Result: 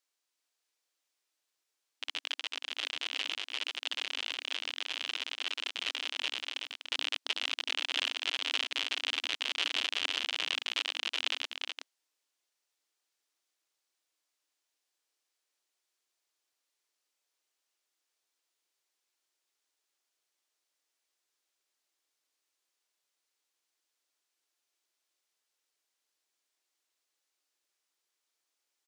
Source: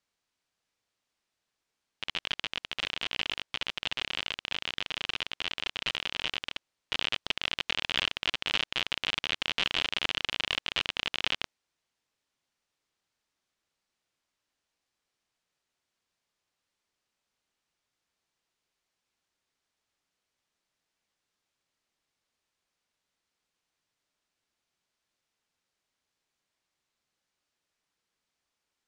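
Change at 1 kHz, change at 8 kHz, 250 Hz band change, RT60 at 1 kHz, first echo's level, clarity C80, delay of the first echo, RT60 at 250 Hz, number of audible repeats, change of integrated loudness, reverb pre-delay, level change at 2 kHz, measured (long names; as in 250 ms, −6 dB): −4.5 dB, +2.0 dB, −8.5 dB, no reverb audible, −5.5 dB, no reverb audible, 372 ms, no reverb audible, 1, −2.0 dB, no reverb audible, −2.5 dB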